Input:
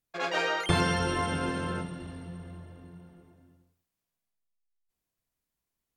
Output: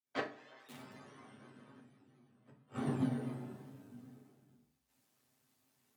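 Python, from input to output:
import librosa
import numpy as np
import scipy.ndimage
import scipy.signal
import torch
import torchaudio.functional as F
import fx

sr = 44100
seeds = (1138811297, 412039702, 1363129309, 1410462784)

p1 = fx.fade_in_head(x, sr, length_s=0.59)
p2 = p1 + fx.echo_single(p1, sr, ms=973, db=-20.0, dry=0)
p3 = p2 * np.sin(2.0 * np.pi * 53.0 * np.arange(len(p2)) / sr)
p4 = (np.mod(10.0 ** (17.5 / 20.0) * p3 + 1.0, 2.0) - 1.0) / 10.0 ** (17.5 / 20.0)
p5 = fx.granulator(p4, sr, seeds[0], grain_ms=100.0, per_s=27.0, spray_ms=14.0, spread_st=3)
p6 = fx.gate_flip(p5, sr, shuts_db=-39.0, range_db=-40)
p7 = scipy.signal.sosfilt(scipy.signal.butter(4, 120.0, 'highpass', fs=sr, output='sos'), p6)
p8 = fx.rev_fdn(p7, sr, rt60_s=0.42, lf_ratio=1.35, hf_ratio=0.75, size_ms=23.0, drr_db=-2.0)
p9 = fx.upward_expand(p8, sr, threshold_db=-52.0, expansion=1.5)
y = F.gain(torch.from_numpy(p9), 16.5).numpy()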